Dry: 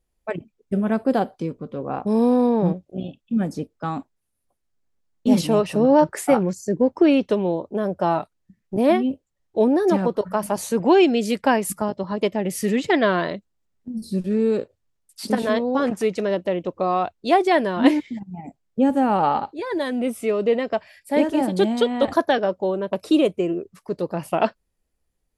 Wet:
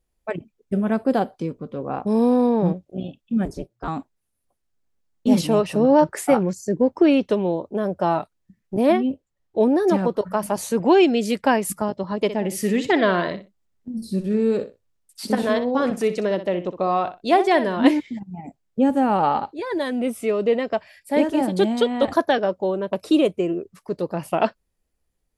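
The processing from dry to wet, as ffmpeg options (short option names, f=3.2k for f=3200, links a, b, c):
-filter_complex "[0:a]asettb=1/sr,asplit=3[a][b][c];[a]atrim=end=3.454[d];[b]atrim=start=3.45:end=3.88,asetpts=PTS-STARTPTS,afade=t=in:d=0.004:c=qsin,afade=t=out:st=0.426:d=0.004:c=qsin,aeval=exprs='val(0)*sin(2*PI*120*n/s)':c=same[e];[c]atrim=start=3.876[f];[d][e]acrossfade=d=0.004:c1=hsin:c2=qsin[g];[g][f]acrossfade=d=0.004:c1=qsin:c2=hsin,asettb=1/sr,asplit=3[h][i][j];[h]atrim=end=8.924[k];[i]atrim=start=8.92:end=9.63,asetpts=PTS-STARTPTS,afade=t=in:d=0.004:c=qsin,afade=t=out:st=0.706:d=0.004:c=qsin,highshelf=f=4.8k:g=-5.5[l];[j]atrim=start=9.626[m];[k][l]acrossfade=d=0.004:c1=hsin:c2=qsin[n];[n][m]acrossfade=d=0.004:c1=qsin:c2=hsin,asettb=1/sr,asplit=3[o][p][q];[o]atrim=end=12.164[r];[p]atrim=start=12.16:end=17.77,asetpts=PTS-STARTPTS,afade=t=in:d=0.004:c=qsin,afade=t=out:st=5.606:d=0.004:c=qsin,aecho=1:1:62|124:0.251|0.0427,atrim=end_sample=247401[s];[q]atrim=start=17.766[t];[r][s]acrossfade=d=0.004:c1=hsin:c2=qsin[u];[u][t]acrossfade=d=0.004:c1=qsin:c2=hsin"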